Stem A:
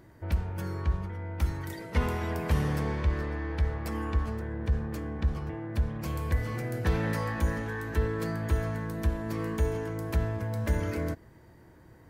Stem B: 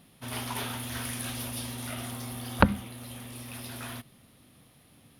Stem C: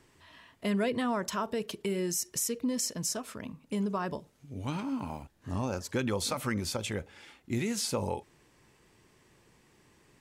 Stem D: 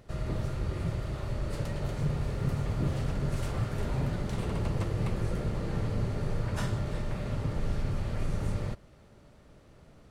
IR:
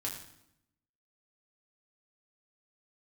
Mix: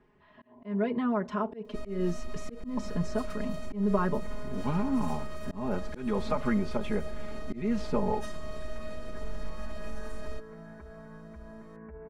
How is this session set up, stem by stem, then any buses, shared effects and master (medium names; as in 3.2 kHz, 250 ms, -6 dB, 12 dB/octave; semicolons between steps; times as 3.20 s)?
-14.0 dB, 2.30 s, no send, steep low-pass 2.1 kHz 48 dB/octave; peak limiter -27 dBFS, peak gain reduction 11.5 dB
-16.5 dB, 0.15 s, no send, FFT band-pass 110–1100 Hz; comb 3.1 ms, depth 75%
+1.5 dB, 0.00 s, no send, Bessel low-pass 1.3 kHz, order 2; gain riding within 4 dB 2 s
-2.5 dB, 1.65 s, no send, octave divider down 2 oct, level -5 dB; peak limiter -24.5 dBFS, peak gain reduction 7.5 dB; robot voice 312 Hz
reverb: none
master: comb 4.8 ms, depth 92%; slow attack 224 ms